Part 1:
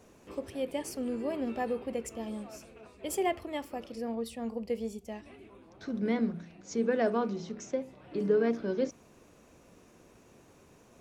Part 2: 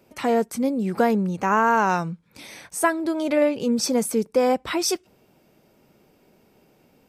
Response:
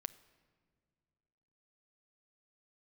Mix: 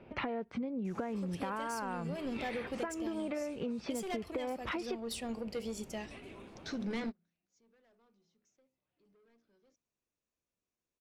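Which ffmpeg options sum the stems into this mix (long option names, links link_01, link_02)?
-filter_complex "[0:a]equalizer=frequency=5100:width=0.32:gain=10.5,asoftclip=type=tanh:threshold=-27.5dB,adelay=850,volume=-1dB[link_01];[1:a]lowpass=frequency=3100:width=0.5412,lowpass=frequency=3100:width=1.3066,acompressor=threshold=-33dB:ratio=2.5,volume=2.5dB,asplit=2[link_02][link_03];[link_03]apad=whole_len=522631[link_04];[link_01][link_04]sidechaingate=range=-38dB:threshold=-57dB:ratio=16:detection=peak[link_05];[link_05][link_02]amix=inputs=2:normalize=0,lowshelf=frequency=86:gain=7.5,acompressor=threshold=-34dB:ratio=10"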